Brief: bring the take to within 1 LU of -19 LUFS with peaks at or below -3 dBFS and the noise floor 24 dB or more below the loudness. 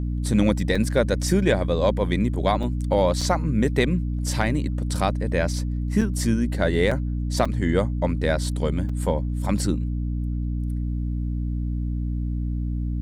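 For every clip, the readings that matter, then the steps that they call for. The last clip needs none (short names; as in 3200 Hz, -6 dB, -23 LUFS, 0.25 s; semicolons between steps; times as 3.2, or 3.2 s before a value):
dropouts 7; longest dropout 4.7 ms; hum 60 Hz; harmonics up to 300 Hz; hum level -23 dBFS; loudness -24.0 LUFS; peak -6.5 dBFS; loudness target -19.0 LUFS
-> interpolate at 0.75/2.63/3.21/6.01/6.91/7.45/8.89, 4.7 ms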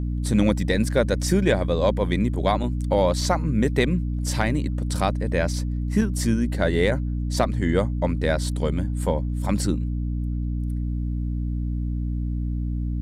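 dropouts 0; hum 60 Hz; harmonics up to 300 Hz; hum level -23 dBFS
-> notches 60/120/180/240/300 Hz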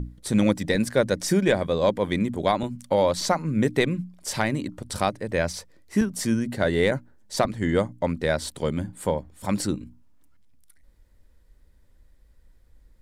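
hum none; loudness -25.0 LUFS; peak -8.0 dBFS; loudness target -19.0 LUFS
-> gain +6 dB; limiter -3 dBFS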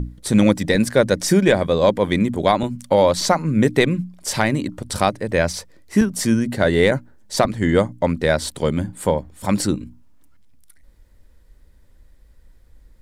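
loudness -19.5 LUFS; peak -3.0 dBFS; noise floor -51 dBFS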